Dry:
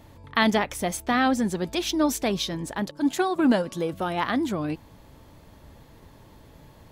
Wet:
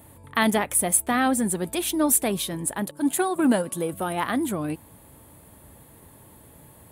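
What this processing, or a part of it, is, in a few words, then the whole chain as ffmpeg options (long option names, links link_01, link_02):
budget condenser microphone: -af "highpass=65,highshelf=frequency=7300:width_type=q:width=3:gain=10.5"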